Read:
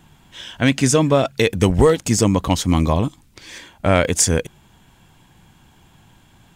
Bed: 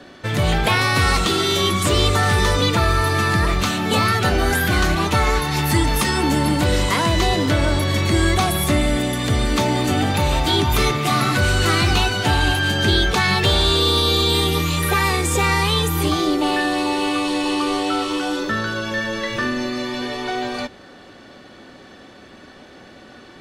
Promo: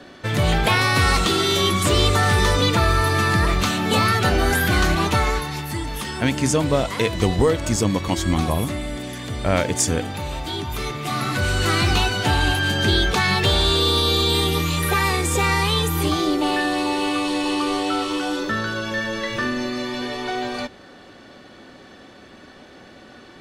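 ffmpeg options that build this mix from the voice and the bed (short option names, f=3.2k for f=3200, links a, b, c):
-filter_complex "[0:a]adelay=5600,volume=-4.5dB[a];[1:a]volume=8dB,afade=t=out:st=5.07:d=0.58:silence=0.334965,afade=t=in:st=10.81:d=1.05:silence=0.375837[b];[a][b]amix=inputs=2:normalize=0"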